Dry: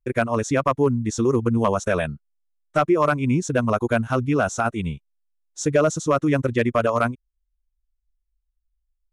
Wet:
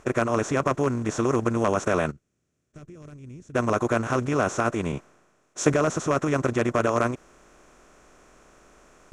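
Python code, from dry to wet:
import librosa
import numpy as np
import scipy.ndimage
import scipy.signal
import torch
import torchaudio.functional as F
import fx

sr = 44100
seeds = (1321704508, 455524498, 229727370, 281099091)

y = fx.bin_compress(x, sr, power=0.4)
y = fx.tone_stack(y, sr, knobs='10-0-1', at=(2.1, 3.54), fade=0.02)
y = fx.band_widen(y, sr, depth_pct=70, at=(4.92, 5.74))
y = F.gain(torch.from_numpy(y), -8.5).numpy()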